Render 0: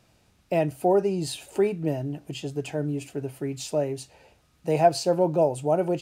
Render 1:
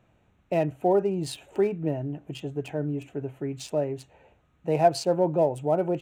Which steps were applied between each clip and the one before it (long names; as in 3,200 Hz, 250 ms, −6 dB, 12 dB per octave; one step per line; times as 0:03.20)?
adaptive Wiener filter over 9 samples
level −1 dB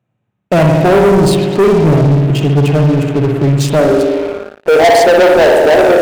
spring reverb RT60 1.5 s, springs 57 ms, chirp 70 ms, DRR 1.5 dB
high-pass filter sweep 130 Hz → 430 Hz, 0:03.60–0:04.49
leveller curve on the samples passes 5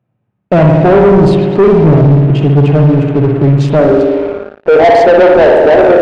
head-to-tape spacing loss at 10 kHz 26 dB
level +3.5 dB